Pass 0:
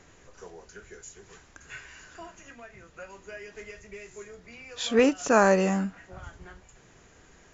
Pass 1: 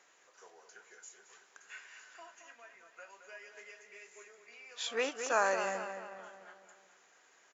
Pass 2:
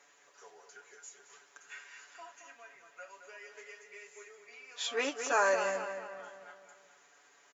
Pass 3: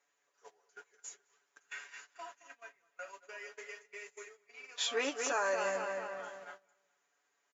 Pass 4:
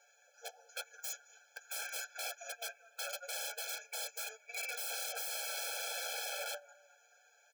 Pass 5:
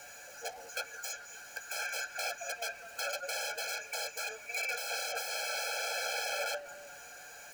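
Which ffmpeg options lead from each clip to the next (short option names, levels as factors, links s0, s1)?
-filter_complex "[0:a]highpass=680,asplit=2[s0][s1];[s1]adelay=220,lowpass=f=3700:p=1,volume=0.398,asplit=2[s2][s3];[s3]adelay=220,lowpass=f=3700:p=1,volume=0.51,asplit=2[s4][s5];[s5]adelay=220,lowpass=f=3700:p=1,volume=0.51,asplit=2[s6][s7];[s7]adelay=220,lowpass=f=3700:p=1,volume=0.51,asplit=2[s8][s9];[s9]adelay=220,lowpass=f=3700:p=1,volume=0.51,asplit=2[s10][s11];[s11]adelay=220,lowpass=f=3700:p=1,volume=0.51[s12];[s2][s4][s6][s8][s10][s12]amix=inputs=6:normalize=0[s13];[s0][s13]amix=inputs=2:normalize=0,volume=0.473"
-af "aecho=1:1:7:0.75"
-af "alimiter=level_in=1.26:limit=0.0631:level=0:latency=1:release=325,volume=0.794,agate=range=0.112:threshold=0.00251:ratio=16:detection=peak,volume=1.41"
-af "acompressor=threshold=0.00708:ratio=4,aeval=exprs='(mod(224*val(0)+1,2)-1)/224':c=same,afftfilt=real='re*eq(mod(floor(b*sr/1024/440),2),1)':imag='im*eq(mod(floor(b*sr/1024/440),2),1)':win_size=1024:overlap=0.75,volume=5.62"
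-filter_complex "[0:a]aeval=exprs='val(0)+0.5*0.00251*sgn(val(0))':c=same,bandreject=f=3500:w=5.7,acrossover=split=620|2700|5800[s0][s1][s2][s3];[s3]acompressor=threshold=0.00282:ratio=6[s4];[s0][s1][s2][s4]amix=inputs=4:normalize=0,volume=2"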